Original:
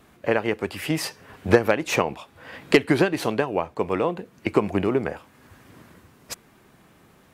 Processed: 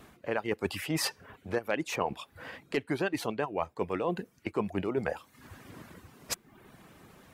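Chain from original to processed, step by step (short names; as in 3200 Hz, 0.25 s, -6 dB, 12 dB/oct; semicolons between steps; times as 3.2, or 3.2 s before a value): reverb removal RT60 0.56 s; reverse; compressor 20:1, threshold -28 dBFS, peak gain reduction 20 dB; reverse; gain +1.5 dB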